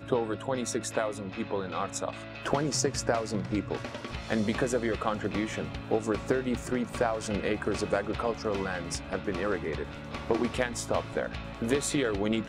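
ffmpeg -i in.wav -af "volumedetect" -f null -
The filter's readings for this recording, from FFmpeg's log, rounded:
mean_volume: -30.7 dB
max_volume: -10.7 dB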